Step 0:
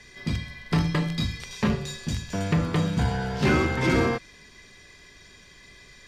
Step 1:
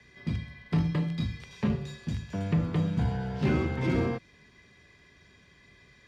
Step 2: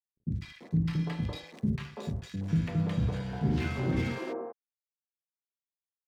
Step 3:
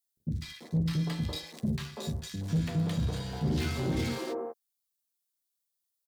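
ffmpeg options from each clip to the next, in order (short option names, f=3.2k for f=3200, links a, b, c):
-filter_complex "[0:a]highpass=69,bass=f=250:g=5,treble=f=4k:g=-10,acrossover=split=270|1100|1900[a][b][c][d];[c]acompressor=threshold=-49dB:ratio=6[e];[a][b][e][d]amix=inputs=4:normalize=0,volume=-6.5dB"
-filter_complex "[0:a]aeval=exprs='sgn(val(0))*max(abs(val(0))-0.00668,0)':c=same,acrossover=split=360|1100[a][b][c];[c]adelay=150[d];[b]adelay=340[e];[a][e][d]amix=inputs=3:normalize=0"
-filter_complex "[0:a]asplit=2[a][b];[b]adelay=13,volume=-9dB[c];[a][c]amix=inputs=2:normalize=0,asoftclip=type=tanh:threshold=-21.5dB,aexciter=amount=3:drive=5.3:freq=3.5k"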